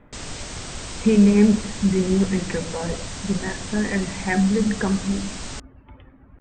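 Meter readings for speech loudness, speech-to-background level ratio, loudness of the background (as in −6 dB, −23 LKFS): −21.5 LKFS, 11.5 dB, −33.0 LKFS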